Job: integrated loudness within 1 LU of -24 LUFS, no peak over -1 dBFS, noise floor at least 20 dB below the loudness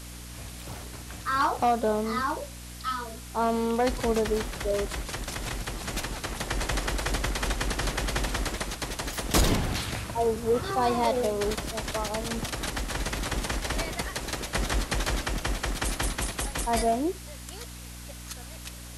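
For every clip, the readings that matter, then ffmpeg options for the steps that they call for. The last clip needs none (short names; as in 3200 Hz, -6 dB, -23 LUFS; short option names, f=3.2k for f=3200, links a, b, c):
hum 60 Hz; harmonics up to 300 Hz; hum level -41 dBFS; noise floor -42 dBFS; noise floor target -49 dBFS; loudness -29.0 LUFS; peak -11.0 dBFS; loudness target -24.0 LUFS
-> -af "bandreject=f=60:t=h:w=4,bandreject=f=120:t=h:w=4,bandreject=f=180:t=h:w=4,bandreject=f=240:t=h:w=4,bandreject=f=300:t=h:w=4"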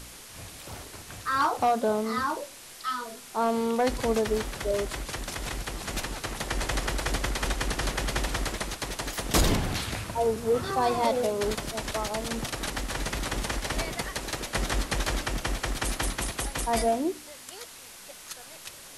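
hum none; noise floor -46 dBFS; noise floor target -49 dBFS
-> -af "afftdn=nr=6:nf=-46"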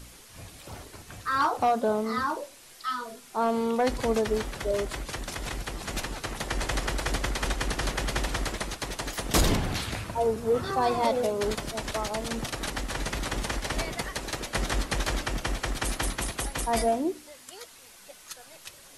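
noise floor -51 dBFS; loudness -29.5 LUFS; peak -11.5 dBFS; loudness target -24.0 LUFS
-> -af "volume=5.5dB"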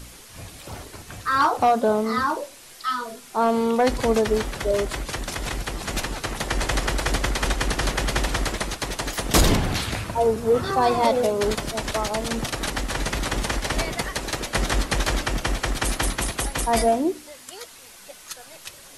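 loudness -24.0 LUFS; peak -6.0 dBFS; noise floor -46 dBFS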